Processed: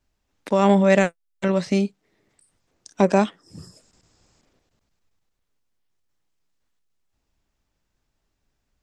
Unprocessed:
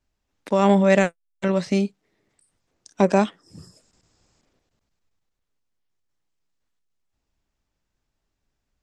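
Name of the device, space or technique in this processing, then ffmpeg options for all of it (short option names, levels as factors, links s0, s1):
parallel compression: -filter_complex "[0:a]asplit=2[s0][s1];[s1]acompressor=threshold=0.0158:ratio=6,volume=0.422[s2];[s0][s2]amix=inputs=2:normalize=0"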